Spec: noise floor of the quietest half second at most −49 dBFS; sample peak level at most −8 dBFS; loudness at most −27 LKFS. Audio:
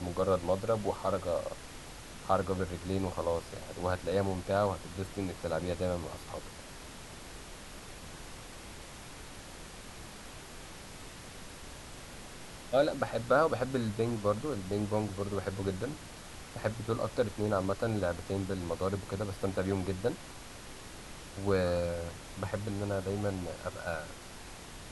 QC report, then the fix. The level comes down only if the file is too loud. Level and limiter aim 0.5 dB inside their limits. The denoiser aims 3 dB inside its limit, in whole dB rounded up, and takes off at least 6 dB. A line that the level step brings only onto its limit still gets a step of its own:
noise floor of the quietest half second −47 dBFS: out of spec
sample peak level −14.5 dBFS: in spec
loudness −33.5 LKFS: in spec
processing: broadband denoise 6 dB, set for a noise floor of −47 dBFS

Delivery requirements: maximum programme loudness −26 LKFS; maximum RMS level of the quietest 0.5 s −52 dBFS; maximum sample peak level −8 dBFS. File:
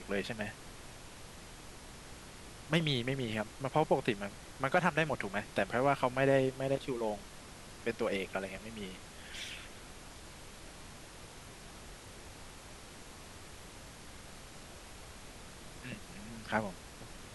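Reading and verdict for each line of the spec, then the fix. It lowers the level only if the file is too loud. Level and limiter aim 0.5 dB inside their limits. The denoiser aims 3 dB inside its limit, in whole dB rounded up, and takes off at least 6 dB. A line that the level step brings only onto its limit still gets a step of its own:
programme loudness −35.0 LKFS: in spec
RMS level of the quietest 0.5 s −51 dBFS: out of spec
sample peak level −13.5 dBFS: in spec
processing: broadband denoise 6 dB, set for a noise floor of −51 dBFS

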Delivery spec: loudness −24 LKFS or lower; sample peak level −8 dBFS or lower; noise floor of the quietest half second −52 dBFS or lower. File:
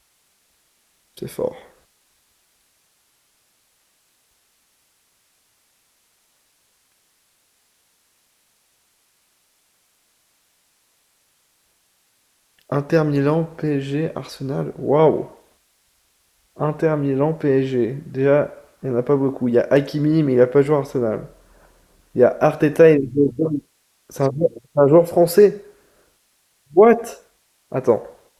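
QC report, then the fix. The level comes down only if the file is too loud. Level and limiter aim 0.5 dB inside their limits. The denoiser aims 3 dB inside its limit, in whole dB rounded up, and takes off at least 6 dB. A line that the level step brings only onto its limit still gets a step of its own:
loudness −18.5 LKFS: out of spec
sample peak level −2.0 dBFS: out of spec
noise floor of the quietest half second −64 dBFS: in spec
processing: level −6 dB
brickwall limiter −8.5 dBFS

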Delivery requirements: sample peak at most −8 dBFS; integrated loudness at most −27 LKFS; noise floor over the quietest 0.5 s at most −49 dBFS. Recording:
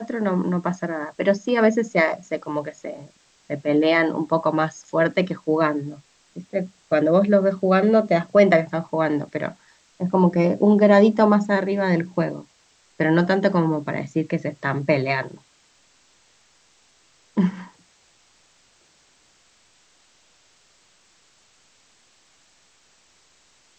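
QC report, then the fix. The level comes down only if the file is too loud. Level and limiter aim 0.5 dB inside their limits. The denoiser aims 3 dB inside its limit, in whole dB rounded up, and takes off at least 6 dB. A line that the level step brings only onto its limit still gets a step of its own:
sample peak −2.5 dBFS: out of spec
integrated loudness −21.0 LKFS: out of spec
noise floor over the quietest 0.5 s −59 dBFS: in spec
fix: level −6.5 dB

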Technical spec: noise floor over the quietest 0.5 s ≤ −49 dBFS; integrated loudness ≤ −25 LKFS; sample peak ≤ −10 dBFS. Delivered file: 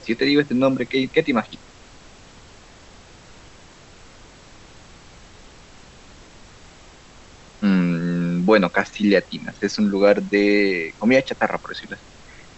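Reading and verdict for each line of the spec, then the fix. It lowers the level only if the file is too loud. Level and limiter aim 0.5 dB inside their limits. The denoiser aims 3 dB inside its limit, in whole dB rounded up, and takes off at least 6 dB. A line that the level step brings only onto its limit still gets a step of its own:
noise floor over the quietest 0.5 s −46 dBFS: out of spec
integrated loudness −19.5 LKFS: out of spec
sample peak −3.5 dBFS: out of spec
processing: level −6 dB
brickwall limiter −10.5 dBFS

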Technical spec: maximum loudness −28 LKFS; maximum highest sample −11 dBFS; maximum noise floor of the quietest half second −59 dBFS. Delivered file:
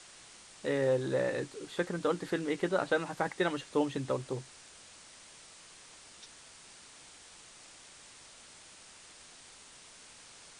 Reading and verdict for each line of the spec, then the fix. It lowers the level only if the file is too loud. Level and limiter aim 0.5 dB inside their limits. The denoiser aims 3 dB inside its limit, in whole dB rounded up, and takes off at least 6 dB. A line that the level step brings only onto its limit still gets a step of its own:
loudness −33.0 LKFS: in spec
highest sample −16.5 dBFS: in spec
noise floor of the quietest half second −54 dBFS: out of spec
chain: broadband denoise 8 dB, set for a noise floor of −54 dBFS

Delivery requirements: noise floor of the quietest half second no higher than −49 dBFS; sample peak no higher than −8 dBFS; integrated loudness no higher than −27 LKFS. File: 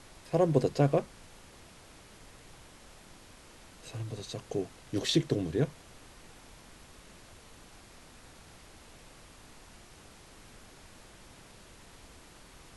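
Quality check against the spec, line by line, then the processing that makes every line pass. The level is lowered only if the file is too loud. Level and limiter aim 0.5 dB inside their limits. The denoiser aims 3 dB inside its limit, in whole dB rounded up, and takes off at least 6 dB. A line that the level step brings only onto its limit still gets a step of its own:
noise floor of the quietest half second −54 dBFS: in spec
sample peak −12.0 dBFS: in spec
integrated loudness −31.0 LKFS: in spec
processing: no processing needed

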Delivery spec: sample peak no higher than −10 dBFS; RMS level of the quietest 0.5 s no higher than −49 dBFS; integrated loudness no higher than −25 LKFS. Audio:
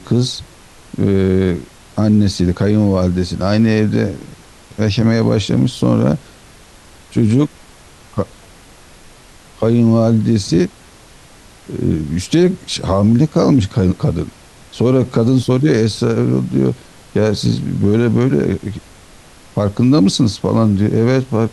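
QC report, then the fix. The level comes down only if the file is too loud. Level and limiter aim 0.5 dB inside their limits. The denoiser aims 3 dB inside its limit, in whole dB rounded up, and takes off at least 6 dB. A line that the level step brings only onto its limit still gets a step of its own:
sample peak −3.0 dBFS: out of spec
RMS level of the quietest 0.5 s −42 dBFS: out of spec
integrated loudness −15.5 LKFS: out of spec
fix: level −10 dB

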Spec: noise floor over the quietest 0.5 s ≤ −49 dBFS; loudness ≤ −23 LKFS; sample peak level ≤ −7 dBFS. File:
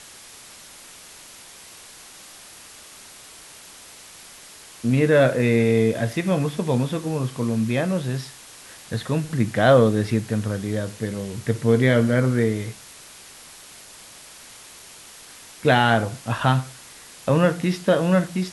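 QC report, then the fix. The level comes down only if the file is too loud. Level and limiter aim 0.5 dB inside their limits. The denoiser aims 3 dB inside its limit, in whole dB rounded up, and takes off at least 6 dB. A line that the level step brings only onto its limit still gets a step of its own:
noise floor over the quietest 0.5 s −44 dBFS: out of spec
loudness −21.5 LKFS: out of spec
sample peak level −3.5 dBFS: out of spec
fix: broadband denoise 6 dB, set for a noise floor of −44 dBFS
level −2 dB
brickwall limiter −7.5 dBFS

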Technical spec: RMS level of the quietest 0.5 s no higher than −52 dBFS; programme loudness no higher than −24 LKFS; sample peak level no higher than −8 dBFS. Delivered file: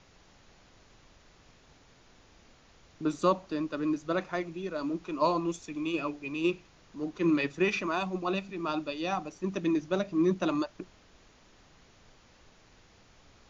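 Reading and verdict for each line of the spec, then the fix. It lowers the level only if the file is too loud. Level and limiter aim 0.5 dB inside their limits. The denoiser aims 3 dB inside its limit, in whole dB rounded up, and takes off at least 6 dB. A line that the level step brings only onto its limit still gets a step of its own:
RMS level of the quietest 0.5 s −59 dBFS: in spec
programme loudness −31.5 LKFS: in spec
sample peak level −13.5 dBFS: in spec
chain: no processing needed

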